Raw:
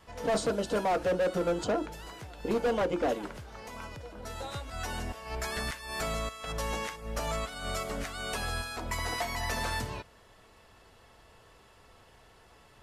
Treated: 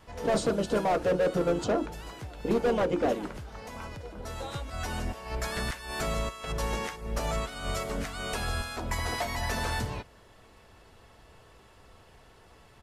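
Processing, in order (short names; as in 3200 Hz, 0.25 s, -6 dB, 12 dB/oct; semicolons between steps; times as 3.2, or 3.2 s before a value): low shelf 430 Hz +4 dB; harmoniser -3 st -9 dB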